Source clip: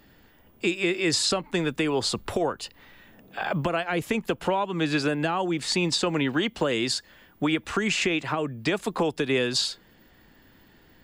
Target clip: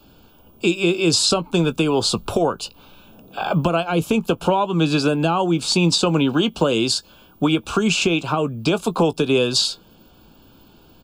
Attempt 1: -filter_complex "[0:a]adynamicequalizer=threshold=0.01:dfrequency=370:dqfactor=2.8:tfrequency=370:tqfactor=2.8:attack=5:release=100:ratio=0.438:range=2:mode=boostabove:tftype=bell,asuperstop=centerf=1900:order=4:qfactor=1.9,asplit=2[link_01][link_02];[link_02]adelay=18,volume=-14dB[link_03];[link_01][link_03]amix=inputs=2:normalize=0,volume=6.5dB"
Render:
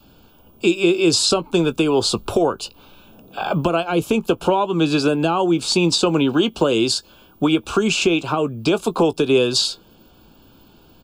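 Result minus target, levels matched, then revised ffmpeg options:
125 Hz band −3.5 dB
-filter_complex "[0:a]adynamicequalizer=threshold=0.01:dfrequency=170:dqfactor=2.8:tfrequency=170:tqfactor=2.8:attack=5:release=100:ratio=0.438:range=2:mode=boostabove:tftype=bell,asuperstop=centerf=1900:order=4:qfactor=1.9,asplit=2[link_01][link_02];[link_02]adelay=18,volume=-14dB[link_03];[link_01][link_03]amix=inputs=2:normalize=0,volume=6.5dB"

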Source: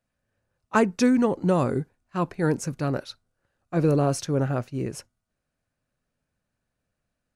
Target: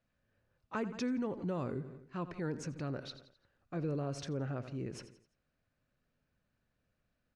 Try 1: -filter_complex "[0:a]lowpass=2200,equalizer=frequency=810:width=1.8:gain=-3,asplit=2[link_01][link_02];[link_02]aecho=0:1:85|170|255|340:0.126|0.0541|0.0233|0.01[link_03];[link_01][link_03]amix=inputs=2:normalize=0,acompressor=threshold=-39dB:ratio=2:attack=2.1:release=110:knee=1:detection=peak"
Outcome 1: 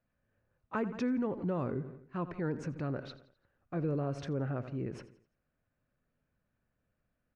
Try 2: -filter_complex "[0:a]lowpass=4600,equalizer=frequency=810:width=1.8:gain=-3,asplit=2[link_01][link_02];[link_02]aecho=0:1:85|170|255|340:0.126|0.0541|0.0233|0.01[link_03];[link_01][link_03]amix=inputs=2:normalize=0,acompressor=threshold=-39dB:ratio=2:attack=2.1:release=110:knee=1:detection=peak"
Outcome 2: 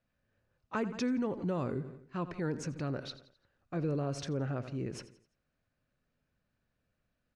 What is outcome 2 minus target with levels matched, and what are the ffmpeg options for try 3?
downward compressor: peak gain reduction −3 dB
-filter_complex "[0:a]lowpass=4600,equalizer=frequency=810:width=1.8:gain=-3,asplit=2[link_01][link_02];[link_02]aecho=0:1:85|170|255|340:0.126|0.0541|0.0233|0.01[link_03];[link_01][link_03]amix=inputs=2:normalize=0,acompressor=threshold=-45dB:ratio=2:attack=2.1:release=110:knee=1:detection=peak"

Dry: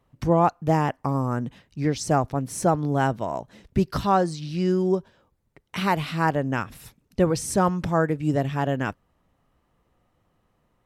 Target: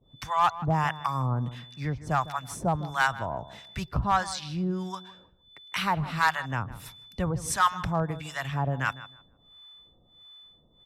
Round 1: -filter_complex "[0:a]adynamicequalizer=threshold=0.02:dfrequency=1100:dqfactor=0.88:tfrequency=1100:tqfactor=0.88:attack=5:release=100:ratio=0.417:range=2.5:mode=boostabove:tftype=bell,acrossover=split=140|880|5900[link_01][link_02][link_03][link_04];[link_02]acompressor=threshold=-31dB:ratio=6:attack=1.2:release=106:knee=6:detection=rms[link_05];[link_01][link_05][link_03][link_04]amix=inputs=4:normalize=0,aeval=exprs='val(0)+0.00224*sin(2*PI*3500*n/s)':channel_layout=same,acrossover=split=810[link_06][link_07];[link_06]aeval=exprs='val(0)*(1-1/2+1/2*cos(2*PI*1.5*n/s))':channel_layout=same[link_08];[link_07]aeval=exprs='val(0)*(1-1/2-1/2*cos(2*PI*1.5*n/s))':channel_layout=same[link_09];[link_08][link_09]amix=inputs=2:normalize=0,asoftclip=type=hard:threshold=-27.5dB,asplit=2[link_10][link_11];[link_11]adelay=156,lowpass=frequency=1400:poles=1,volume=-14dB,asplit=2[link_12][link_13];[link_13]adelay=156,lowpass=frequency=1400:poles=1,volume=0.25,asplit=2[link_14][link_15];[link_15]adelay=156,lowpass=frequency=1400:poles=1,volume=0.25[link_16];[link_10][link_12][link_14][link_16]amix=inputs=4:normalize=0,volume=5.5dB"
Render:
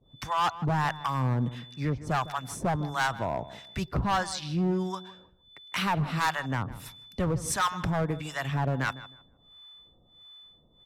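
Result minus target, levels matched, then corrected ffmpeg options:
downward compressor: peak gain reduction −8 dB; hard clipping: distortion +8 dB
-filter_complex "[0:a]adynamicequalizer=threshold=0.02:dfrequency=1100:dqfactor=0.88:tfrequency=1100:tqfactor=0.88:attack=5:release=100:ratio=0.417:range=2.5:mode=boostabove:tftype=bell,acrossover=split=140|880|5900[link_01][link_02][link_03][link_04];[link_02]acompressor=threshold=-40.5dB:ratio=6:attack=1.2:release=106:knee=6:detection=rms[link_05];[link_01][link_05][link_03][link_04]amix=inputs=4:normalize=0,aeval=exprs='val(0)+0.00224*sin(2*PI*3500*n/s)':channel_layout=same,acrossover=split=810[link_06][link_07];[link_06]aeval=exprs='val(0)*(1-1/2+1/2*cos(2*PI*1.5*n/s))':channel_layout=same[link_08];[link_07]aeval=exprs='val(0)*(1-1/2-1/2*cos(2*PI*1.5*n/s))':channel_layout=same[link_09];[link_08][link_09]amix=inputs=2:normalize=0,asoftclip=type=hard:threshold=-20.5dB,asplit=2[link_10][link_11];[link_11]adelay=156,lowpass=frequency=1400:poles=1,volume=-14dB,asplit=2[link_12][link_13];[link_13]adelay=156,lowpass=frequency=1400:poles=1,volume=0.25,asplit=2[link_14][link_15];[link_15]adelay=156,lowpass=frequency=1400:poles=1,volume=0.25[link_16];[link_10][link_12][link_14][link_16]amix=inputs=4:normalize=0,volume=5.5dB"

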